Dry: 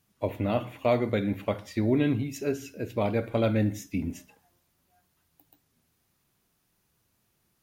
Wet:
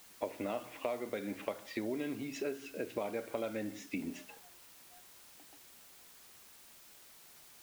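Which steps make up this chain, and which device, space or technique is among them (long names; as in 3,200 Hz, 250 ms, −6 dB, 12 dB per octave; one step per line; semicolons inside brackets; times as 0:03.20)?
baby monitor (band-pass filter 320–3,900 Hz; downward compressor, threshold −41 dBFS, peak gain reduction 19.5 dB; white noise bed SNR 16 dB)
level +5.5 dB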